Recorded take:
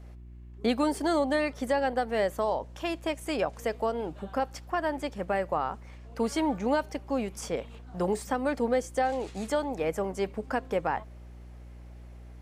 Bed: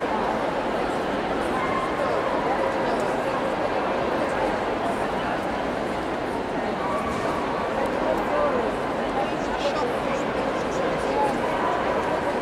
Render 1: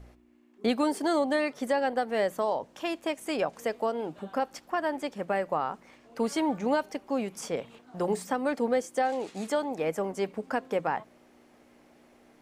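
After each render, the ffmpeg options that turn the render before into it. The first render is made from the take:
ffmpeg -i in.wav -af "bandreject=frequency=60:width_type=h:width=4,bandreject=frequency=120:width_type=h:width=4,bandreject=frequency=180:width_type=h:width=4" out.wav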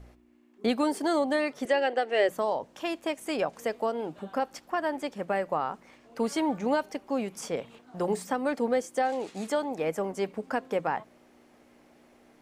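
ffmpeg -i in.wav -filter_complex "[0:a]asettb=1/sr,asplit=3[link_01][link_02][link_03];[link_01]atrim=end=1.654[link_04];[link_02]atrim=start=1.65:end=2.29,asetpts=PTS-STARTPTS,afade=type=in:duration=0.004:curve=qsin,afade=type=out:start_time=0.636:duration=0.004:curve=qsin,highpass=frequency=300:width=0.5412,highpass=frequency=300:width=1.3066,equalizer=frequency=370:width_type=q:width=4:gain=9,equalizer=frequency=640:width_type=q:width=4:gain=3,equalizer=frequency=1000:width_type=q:width=4:gain=-6,equalizer=frequency=1900:width_type=q:width=4:gain=5,equalizer=frequency=2800:width_type=q:width=4:gain=9,lowpass=frequency=8300:width=0.5412,lowpass=frequency=8300:width=1.3066[link_05];[link_03]atrim=start=2.286[link_06];[link_04][link_05]acrossfade=duration=0.004:curve1=hsin:curve2=qsin[link_07];[link_07][link_06]acrossfade=duration=0.004:curve1=qsin:curve2=hsin" out.wav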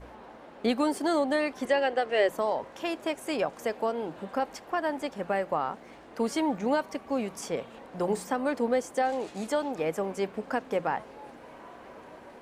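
ffmpeg -i in.wav -i bed.wav -filter_complex "[1:a]volume=-24dB[link_01];[0:a][link_01]amix=inputs=2:normalize=0" out.wav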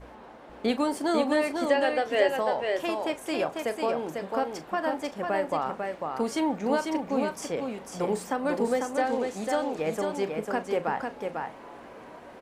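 ffmpeg -i in.wav -filter_complex "[0:a]asplit=2[link_01][link_02];[link_02]adelay=38,volume=-13dB[link_03];[link_01][link_03]amix=inputs=2:normalize=0,aecho=1:1:497:0.596" out.wav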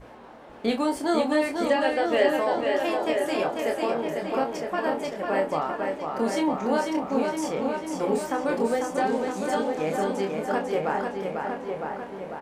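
ffmpeg -i in.wav -filter_complex "[0:a]asplit=2[link_01][link_02];[link_02]adelay=26,volume=-5dB[link_03];[link_01][link_03]amix=inputs=2:normalize=0,asplit=2[link_04][link_05];[link_05]adelay=959,lowpass=frequency=2200:poles=1,volume=-5dB,asplit=2[link_06][link_07];[link_07]adelay=959,lowpass=frequency=2200:poles=1,volume=0.46,asplit=2[link_08][link_09];[link_09]adelay=959,lowpass=frequency=2200:poles=1,volume=0.46,asplit=2[link_10][link_11];[link_11]adelay=959,lowpass=frequency=2200:poles=1,volume=0.46,asplit=2[link_12][link_13];[link_13]adelay=959,lowpass=frequency=2200:poles=1,volume=0.46,asplit=2[link_14][link_15];[link_15]adelay=959,lowpass=frequency=2200:poles=1,volume=0.46[link_16];[link_04][link_06][link_08][link_10][link_12][link_14][link_16]amix=inputs=7:normalize=0" out.wav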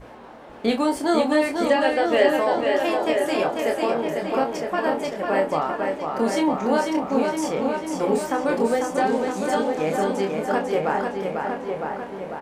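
ffmpeg -i in.wav -af "volume=3.5dB" out.wav

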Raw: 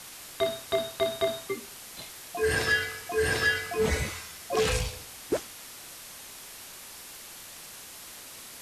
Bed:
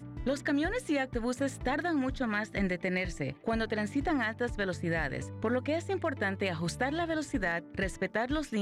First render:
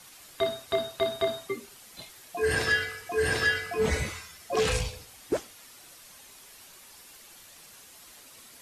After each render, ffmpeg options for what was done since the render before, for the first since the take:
ffmpeg -i in.wav -af "afftdn=noise_reduction=8:noise_floor=-45" out.wav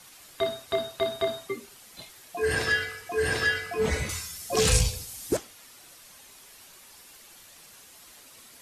ffmpeg -i in.wav -filter_complex "[0:a]asettb=1/sr,asplit=3[link_01][link_02][link_03];[link_01]atrim=end=4.094[link_04];[link_02]atrim=start=4.09:end=5.37,asetpts=PTS-STARTPTS,afade=type=in:duration=0.004:curve=qsin,afade=type=out:start_time=1.276:duration=0.004:curve=qsin,bass=frequency=250:gain=8,treble=frequency=4000:gain=12[link_05];[link_03]atrim=start=5.366[link_06];[link_04][link_05]acrossfade=duration=0.004:curve1=hsin:curve2=qsin[link_07];[link_07][link_06]acrossfade=duration=0.004:curve1=qsin:curve2=hsin" out.wav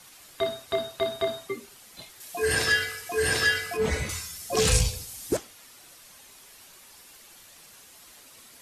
ffmpeg -i in.wav -filter_complex "[0:a]asettb=1/sr,asplit=3[link_01][link_02][link_03];[link_01]atrim=end=2.204[link_04];[link_02]atrim=start=2.2:end=3.77,asetpts=PTS-STARTPTS,afade=type=in:duration=0.004:curve=qsin,afade=type=out:start_time=1.566:duration=0.004:curve=qsin,highshelf=frequency=3500:gain=9[link_05];[link_03]atrim=start=3.766[link_06];[link_04][link_05]acrossfade=duration=0.004:curve1=hsin:curve2=qsin[link_07];[link_07][link_06]acrossfade=duration=0.004:curve1=qsin:curve2=hsin" out.wav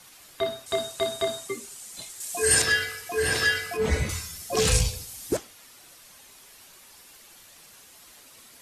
ffmpeg -i in.wav -filter_complex "[0:a]asettb=1/sr,asplit=3[link_01][link_02][link_03];[link_01]atrim=end=0.664[link_04];[link_02]atrim=start=0.66:end=2.62,asetpts=PTS-STARTPTS,afade=type=in:duration=0.004:curve=qsin,afade=type=out:start_time=1.956:duration=0.004:curve=qsin,equalizer=frequency=7900:width_type=o:width=1:gain=13.5[link_05];[link_03]atrim=start=2.616[link_06];[link_04][link_05]acrossfade=duration=0.004:curve1=hsin:curve2=qsin[link_07];[link_07][link_06]acrossfade=duration=0.004:curve1=qsin:curve2=hsin,asettb=1/sr,asplit=3[link_08][link_09][link_10];[link_08]atrim=end=3.894[link_11];[link_09]atrim=start=3.89:end=4.44,asetpts=PTS-STARTPTS,afade=type=in:duration=0.004:curve=qsin,afade=type=out:start_time=0.546:duration=0.004:curve=qsin,lowshelf=frequency=420:gain=5.5[link_12];[link_10]atrim=start=4.436[link_13];[link_11][link_12]acrossfade=duration=0.004:curve1=hsin:curve2=qsin[link_14];[link_14][link_13]acrossfade=duration=0.004:curve1=qsin:curve2=hsin" out.wav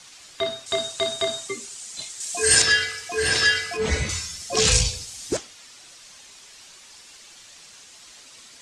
ffmpeg -i in.wav -af "lowpass=frequency=7700:width=0.5412,lowpass=frequency=7700:width=1.3066,highshelf=frequency=2200:gain=9" out.wav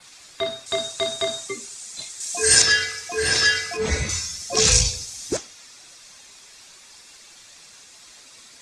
ffmpeg -i in.wav -af "bandreject=frequency=3000:width=11,adynamicequalizer=threshold=0.0141:dfrequency=6000:dqfactor=3.1:tfrequency=6000:tqfactor=3.1:attack=5:release=100:ratio=0.375:range=3:mode=boostabove:tftype=bell" out.wav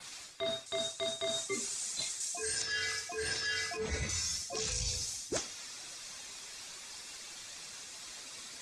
ffmpeg -i in.wav -af "alimiter=limit=-11dB:level=0:latency=1:release=497,areverse,acompressor=threshold=-32dB:ratio=16,areverse" out.wav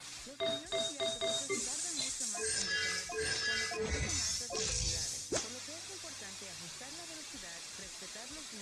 ffmpeg -i in.wav -i bed.wav -filter_complex "[1:a]volume=-21.5dB[link_01];[0:a][link_01]amix=inputs=2:normalize=0" out.wav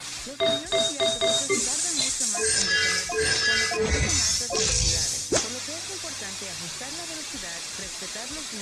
ffmpeg -i in.wav -af "volume=12dB" out.wav

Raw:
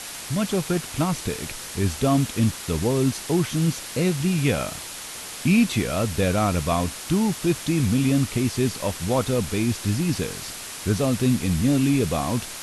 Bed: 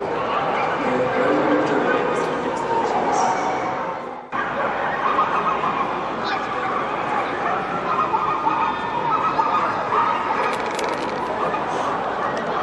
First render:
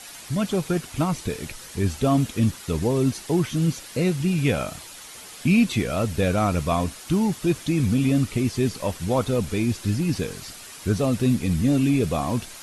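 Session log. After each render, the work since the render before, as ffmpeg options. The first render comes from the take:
ffmpeg -i in.wav -af "afftdn=noise_reduction=8:noise_floor=-36" out.wav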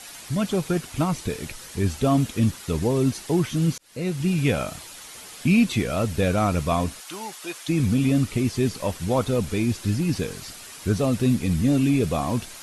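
ffmpeg -i in.wav -filter_complex "[0:a]asplit=3[link_01][link_02][link_03];[link_01]afade=type=out:start_time=7:duration=0.02[link_04];[link_02]highpass=720,afade=type=in:start_time=7:duration=0.02,afade=type=out:start_time=7.68:duration=0.02[link_05];[link_03]afade=type=in:start_time=7.68:duration=0.02[link_06];[link_04][link_05][link_06]amix=inputs=3:normalize=0,asplit=2[link_07][link_08];[link_07]atrim=end=3.78,asetpts=PTS-STARTPTS,afade=type=out:start_time=3.776:duration=0.004:curve=hsin[link_09];[link_08]atrim=start=3.78,asetpts=PTS-STARTPTS,afade=type=in:duration=0.49[link_10];[link_09][link_10]concat=n=2:v=0:a=1" out.wav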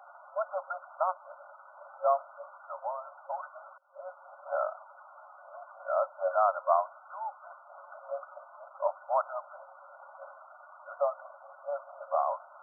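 ffmpeg -i in.wav -af "afftfilt=real='re*between(b*sr/4096,540,1500)':imag='im*between(b*sr/4096,540,1500)':win_size=4096:overlap=0.75" out.wav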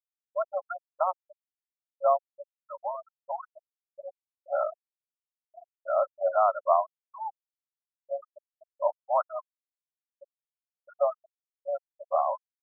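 ffmpeg -i in.wav -af "afftfilt=real='re*gte(hypot(re,im),0.0562)':imag='im*gte(hypot(re,im),0.0562)':win_size=1024:overlap=0.75,lowshelf=frequency=490:gain=9.5" out.wav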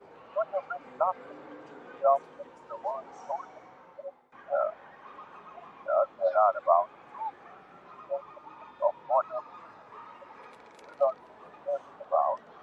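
ffmpeg -i in.wav -i bed.wav -filter_complex "[1:a]volume=-28.5dB[link_01];[0:a][link_01]amix=inputs=2:normalize=0" out.wav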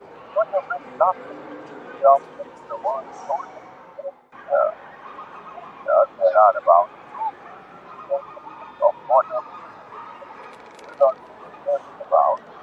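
ffmpeg -i in.wav -af "volume=9.5dB,alimiter=limit=-2dB:level=0:latency=1" out.wav

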